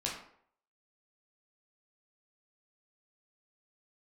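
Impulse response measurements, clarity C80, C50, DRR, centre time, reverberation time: 8.0 dB, 4.5 dB, −4.0 dB, 36 ms, 0.65 s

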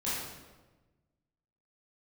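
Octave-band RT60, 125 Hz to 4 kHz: 1.8, 1.5, 1.3, 1.1, 1.0, 0.85 seconds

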